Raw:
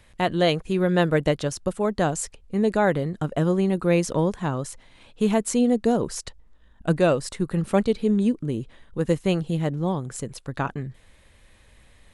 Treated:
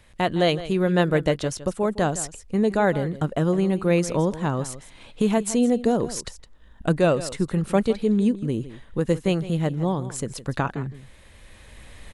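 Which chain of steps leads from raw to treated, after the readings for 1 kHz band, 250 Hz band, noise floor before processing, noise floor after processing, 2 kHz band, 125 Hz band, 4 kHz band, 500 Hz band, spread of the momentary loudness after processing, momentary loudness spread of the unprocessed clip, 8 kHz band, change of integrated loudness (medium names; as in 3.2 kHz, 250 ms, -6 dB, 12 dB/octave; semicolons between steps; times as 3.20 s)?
+0.5 dB, +0.5 dB, -55 dBFS, -50 dBFS, +0.5 dB, +1.0 dB, +0.5 dB, +0.5 dB, 10 LU, 11 LU, +1.0 dB, +0.5 dB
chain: recorder AGC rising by 6.5 dB/s; delay 162 ms -15 dB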